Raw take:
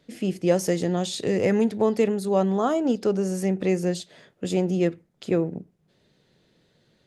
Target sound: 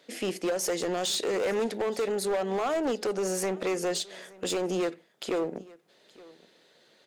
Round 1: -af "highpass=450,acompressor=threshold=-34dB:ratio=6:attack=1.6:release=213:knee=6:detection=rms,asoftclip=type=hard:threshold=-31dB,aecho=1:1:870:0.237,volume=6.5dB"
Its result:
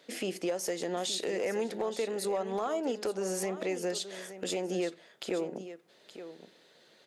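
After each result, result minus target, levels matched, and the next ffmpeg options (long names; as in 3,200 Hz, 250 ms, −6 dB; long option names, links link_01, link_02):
downward compressor: peak gain reduction +6.5 dB; echo-to-direct +10 dB
-af "highpass=450,acompressor=threshold=-26dB:ratio=6:attack=1.6:release=213:knee=6:detection=rms,asoftclip=type=hard:threshold=-31dB,aecho=1:1:870:0.237,volume=6.5dB"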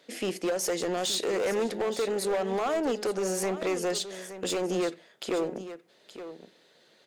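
echo-to-direct +10 dB
-af "highpass=450,acompressor=threshold=-26dB:ratio=6:attack=1.6:release=213:knee=6:detection=rms,asoftclip=type=hard:threshold=-31dB,aecho=1:1:870:0.075,volume=6.5dB"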